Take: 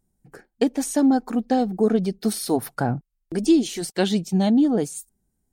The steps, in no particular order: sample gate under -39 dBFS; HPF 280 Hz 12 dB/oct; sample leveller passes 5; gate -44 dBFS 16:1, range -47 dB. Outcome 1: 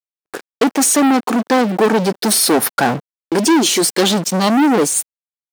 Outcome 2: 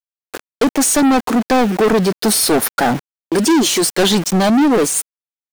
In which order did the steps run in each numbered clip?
sample leveller > sample gate > HPF > gate; sample gate > HPF > sample leveller > gate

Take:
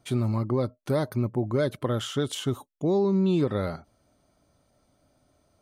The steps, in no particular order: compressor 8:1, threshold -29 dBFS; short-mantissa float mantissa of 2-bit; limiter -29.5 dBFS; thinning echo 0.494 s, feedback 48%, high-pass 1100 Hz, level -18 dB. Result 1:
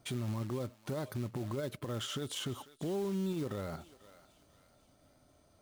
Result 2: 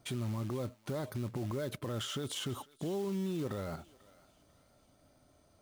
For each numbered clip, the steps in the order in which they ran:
short-mantissa float > compressor > thinning echo > limiter; limiter > compressor > short-mantissa float > thinning echo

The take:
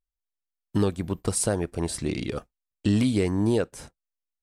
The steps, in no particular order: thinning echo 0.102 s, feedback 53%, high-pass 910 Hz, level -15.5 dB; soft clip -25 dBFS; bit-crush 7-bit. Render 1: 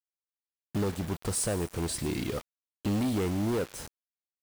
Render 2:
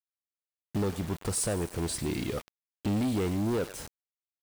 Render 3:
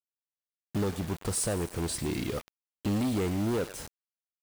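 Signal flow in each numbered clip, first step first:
soft clip > thinning echo > bit-crush; thinning echo > bit-crush > soft clip; thinning echo > soft clip > bit-crush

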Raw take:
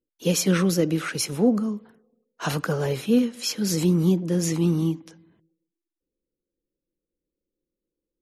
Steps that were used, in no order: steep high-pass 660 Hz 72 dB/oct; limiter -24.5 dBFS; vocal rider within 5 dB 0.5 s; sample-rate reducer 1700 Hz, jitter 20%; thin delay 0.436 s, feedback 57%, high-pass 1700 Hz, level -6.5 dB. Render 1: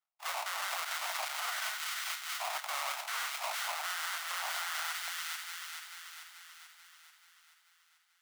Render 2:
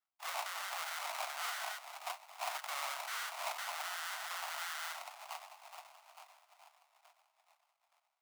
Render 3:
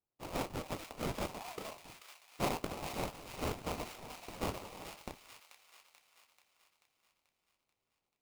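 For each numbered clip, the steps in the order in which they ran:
sample-rate reducer > thin delay > vocal rider > steep high-pass > limiter; vocal rider > thin delay > limiter > sample-rate reducer > steep high-pass; limiter > steep high-pass > sample-rate reducer > vocal rider > thin delay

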